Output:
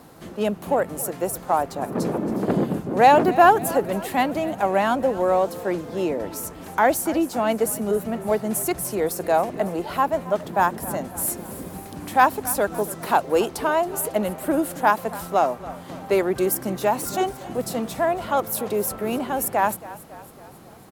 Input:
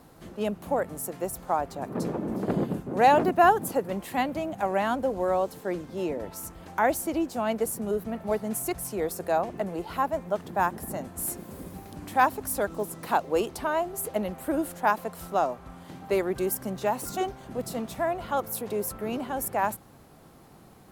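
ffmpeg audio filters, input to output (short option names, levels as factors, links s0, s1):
-filter_complex "[0:a]asplit=2[s0][s1];[s1]asoftclip=type=tanh:threshold=0.0562,volume=0.282[s2];[s0][s2]amix=inputs=2:normalize=0,lowshelf=f=64:g=-11,asplit=6[s3][s4][s5][s6][s7][s8];[s4]adelay=275,afreqshift=-32,volume=0.133[s9];[s5]adelay=550,afreqshift=-64,volume=0.0776[s10];[s6]adelay=825,afreqshift=-96,volume=0.0447[s11];[s7]adelay=1100,afreqshift=-128,volume=0.026[s12];[s8]adelay=1375,afreqshift=-160,volume=0.0151[s13];[s3][s9][s10][s11][s12][s13]amix=inputs=6:normalize=0,volume=1.68"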